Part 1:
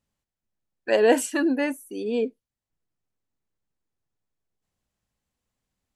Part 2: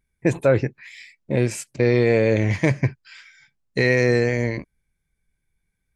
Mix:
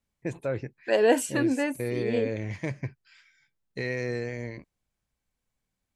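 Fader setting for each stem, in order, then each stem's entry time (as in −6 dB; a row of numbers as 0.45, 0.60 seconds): −2.5, −13.0 decibels; 0.00, 0.00 seconds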